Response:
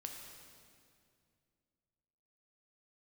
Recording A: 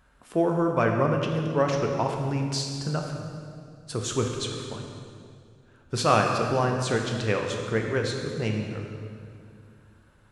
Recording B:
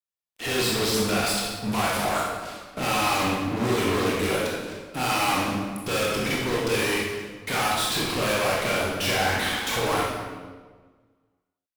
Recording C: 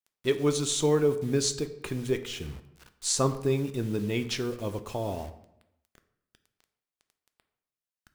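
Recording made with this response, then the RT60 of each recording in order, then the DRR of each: A; 2.3, 1.5, 0.80 seconds; 1.5, −4.5, 9.0 decibels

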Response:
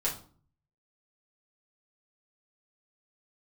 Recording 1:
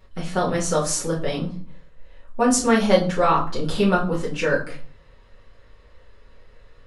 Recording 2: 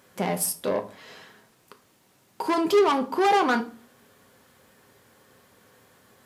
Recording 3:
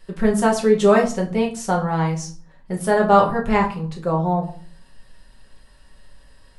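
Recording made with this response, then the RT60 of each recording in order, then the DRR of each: 1; 0.45, 0.45, 0.45 seconds; −6.5, 7.0, −2.0 decibels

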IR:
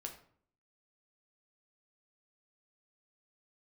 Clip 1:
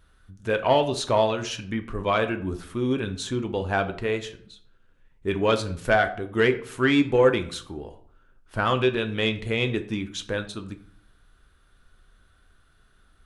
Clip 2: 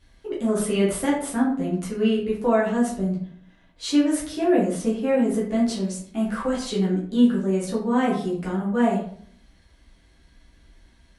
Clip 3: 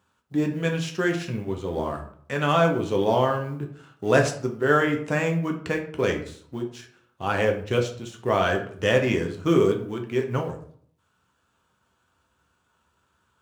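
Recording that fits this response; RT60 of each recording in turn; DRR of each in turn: 3; 0.55, 0.55, 0.55 seconds; 7.5, −6.5, 2.5 decibels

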